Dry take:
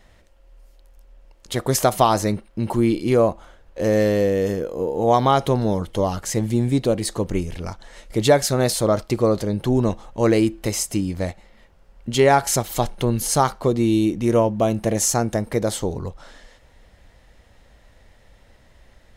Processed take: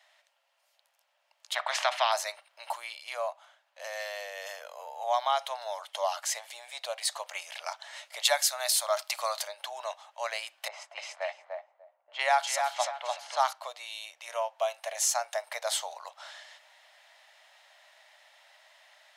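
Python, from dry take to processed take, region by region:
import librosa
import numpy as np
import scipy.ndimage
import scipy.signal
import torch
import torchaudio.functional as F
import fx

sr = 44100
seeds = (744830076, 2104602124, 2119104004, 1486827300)

y = fx.chain(x, sr, fx.lowpass(hz=1700.0, slope=12),
    fx.spectral_comp(ratio=2.0), at=(1.55, 2.12))
y = fx.chain(y, sr, fx.highpass(hz=650.0, slope=12),
    fx.high_shelf(hz=7400.0, db=10.5), at=(8.25, 9.48))
y = fx.chain(y, sr, fx.echo_feedback(ms=295, feedback_pct=22, wet_db=-4.5),
    fx.env_lowpass(base_hz=430.0, full_db=-12.0), at=(10.68, 13.53))
y = fx.rider(y, sr, range_db=10, speed_s=0.5)
y = scipy.signal.sosfilt(scipy.signal.cheby1(6, 1.0, 610.0, 'highpass', fs=sr, output='sos'), y)
y = fx.peak_eq(y, sr, hz=3400.0, db=5.0, octaves=1.5)
y = F.gain(torch.from_numpy(y), -6.5).numpy()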